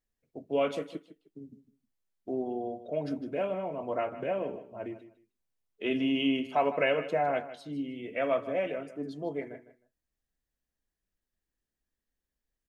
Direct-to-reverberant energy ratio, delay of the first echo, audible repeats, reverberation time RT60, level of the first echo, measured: no reverb, 155 ms, 2, no reverb, -14.0 dB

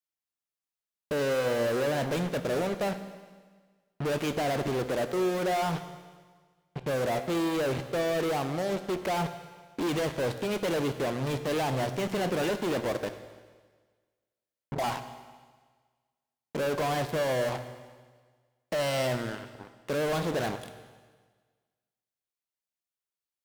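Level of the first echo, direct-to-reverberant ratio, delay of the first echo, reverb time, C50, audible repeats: no echo, 9.0 dB, no echo, 1.5 s, 10.5 dB, no echo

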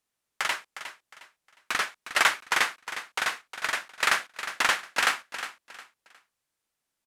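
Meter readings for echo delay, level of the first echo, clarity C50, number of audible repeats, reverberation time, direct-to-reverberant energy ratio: 359 ms, -11.5 dB, no reverb, 3, no reverb, no reverb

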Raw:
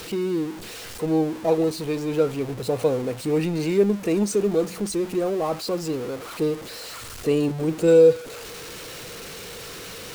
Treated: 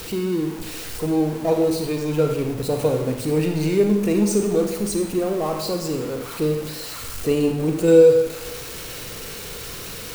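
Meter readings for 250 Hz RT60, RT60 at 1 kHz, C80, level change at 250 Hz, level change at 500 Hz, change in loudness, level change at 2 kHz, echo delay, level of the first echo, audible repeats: 0.80 s, 0.85 s, 8.0 dB, +3.0 dB, +2.0 dB, +2.0 dB, +2.0 dB, no echo, no echo, no echo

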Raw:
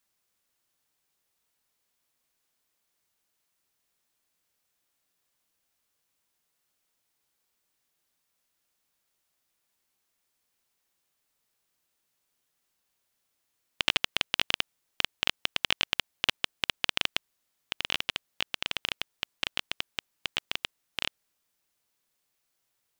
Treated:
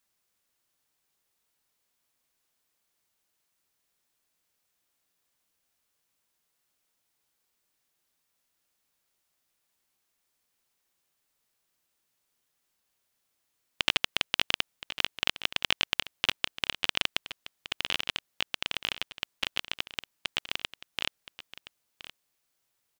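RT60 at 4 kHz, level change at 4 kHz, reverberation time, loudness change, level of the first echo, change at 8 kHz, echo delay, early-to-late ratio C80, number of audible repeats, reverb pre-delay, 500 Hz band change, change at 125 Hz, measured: no reverb, 0.0 dB, no reverb, 0.0 dB, -14.5 dB, 0.0 dB, 1021 ms, no reverb, 1, no reverb, 0.0 dB, 0.0 dB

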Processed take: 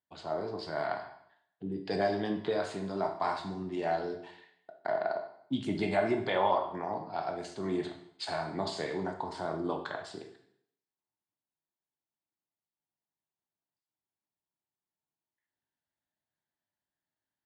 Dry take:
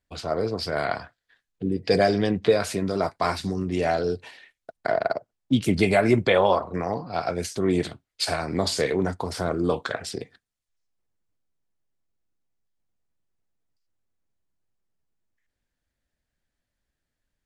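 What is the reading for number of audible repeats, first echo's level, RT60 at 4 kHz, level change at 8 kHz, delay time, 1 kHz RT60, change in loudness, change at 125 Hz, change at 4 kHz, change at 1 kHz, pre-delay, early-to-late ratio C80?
no echo, no echo, 0.65 s, -17.0 dB, no echo, 0.70 s, -9.0 dB, -13.0 dB, -11.0 dB, -5.5 dB, 14 ms, 11.5 dB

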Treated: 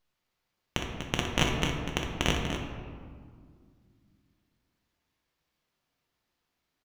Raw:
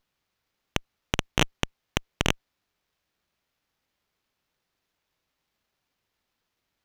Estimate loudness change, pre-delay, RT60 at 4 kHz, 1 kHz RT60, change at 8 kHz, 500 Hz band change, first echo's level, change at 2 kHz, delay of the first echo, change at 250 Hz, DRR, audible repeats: -1.5 dB, 6 ms, 1.0 s, 1.9 s, -2.0 dB, -0.5 dB, -8.0 dB, -1.5 dB, 61 ms, +1.0 dB, -1.0 dB, 2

